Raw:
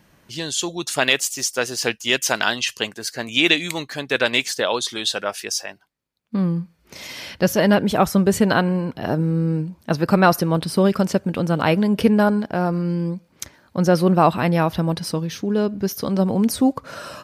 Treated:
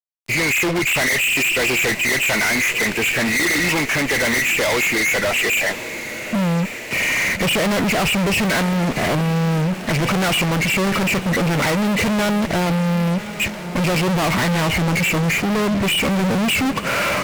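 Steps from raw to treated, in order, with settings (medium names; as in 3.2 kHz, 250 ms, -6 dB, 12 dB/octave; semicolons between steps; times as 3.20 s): knee-point frequency compression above 1.8 kHz 4:1; fuzz box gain 41 dB, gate -44 dBFS; on a send: echo that smears into a reverb 1080 ms, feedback 47%, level -15 dB; on the sum: power-law waveshaper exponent 0.7; trim -6 dB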